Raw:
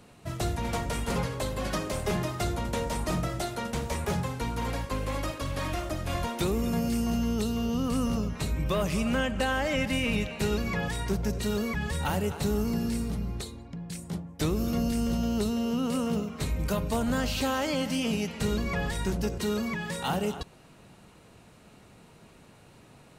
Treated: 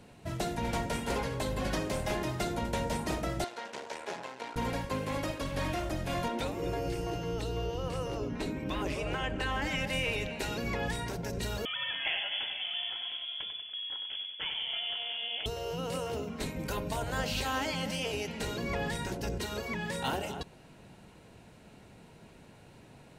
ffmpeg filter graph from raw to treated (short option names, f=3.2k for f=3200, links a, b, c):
-filter_complex "[0:a]asettb=1/sr,asplit=3[a][b][c];[a]atrim=end=3.444[d];[b]atrim=start=3.44:end=4.56,asetpts=PTS-STARTPTS,afade=t=in:d=0.004:c=qsin,afade=t=out:st=1.116:d=0.004:c=qsin,aeval=exprs='max(val(0),0)':c=same,highpass=470,lowpass=7k[e];[c]atrim=start=4.556[f];[d][e]acrossfade=d=0.004:c1=hsin:c2=qsin[g];[g][f]acrossfade=d=0.004:c1=qsin:c2=hsin,asettb=1/sr,asplit=3[h][i][j];[h]atrim=end=6.284[k];[i]atrim=start=6.28:end=9.62,asetpts=PTS-STARTPTS,afade=t=in:d=0.004:c=qsin,afade=t=out:st=3.336:d=0.004:c=qsin,lowpass=f=3.9k:p=1,equalizer=f=300:t=o:w=0.53:g=11.5[l];[j]atrim=start=9.616[m];[k][l]acrossfade=d=0.004:c1=hsin:c2=qsin[n];[n][m]acrossfade=d=0.004:c1=qsin:c2=hsin,asettb=1/sr,asplit=3[o][p][q];[o]atrim=end=11.654[r];[p]atrim=start=11.65:end=15.46,asetpts=PTS-STARTPTS,afade=t=in:d=0.004:c=qsin,afade=t=out:st=3.806:d=0.004:c=qsin,lowpass=f=3k:t=q:w=0.5098,lowpass=f=3k:t=q:w=0.6013,lowpass=f=3k:t=q:w=0.9,lowpass=f=3k:t=q:w=2.563,afreqshift=-3500,aecho=1:1:95|190|285|380|475|570|665:0.447|0.241|0.13|0.0703|0.038|0.0205|0.0111,atrim=end_sample=168021[s];[q]atrim=start=15.456[t];[r][s]acrossfade=d=0.004:c1=hsin:c2=qsin[u];[u][t]acrossfade=d=0.004:c1=qsin:c2=hsin,afftfilt=real='re*lt(hypot(re,im),0.224)':imag='im*lt(hypot(re,im),0.224)':win_size=1024:overlap=0.75,highshelf=f=5k:g=-5,bandreject=f=1.2k:w=6.3"